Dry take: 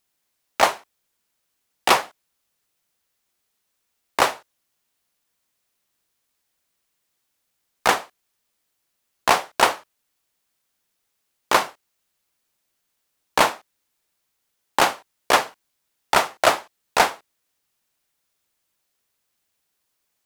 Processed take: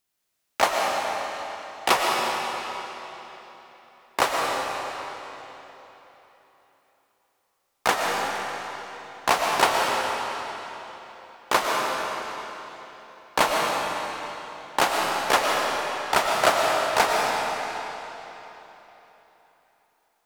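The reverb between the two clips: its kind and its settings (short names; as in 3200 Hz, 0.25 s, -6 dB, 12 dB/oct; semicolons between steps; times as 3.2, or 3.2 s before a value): digital reverb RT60 3.7 s, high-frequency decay 0.9×, pre-delay 75 ms, DRR -1.5 dB; gain -4 dB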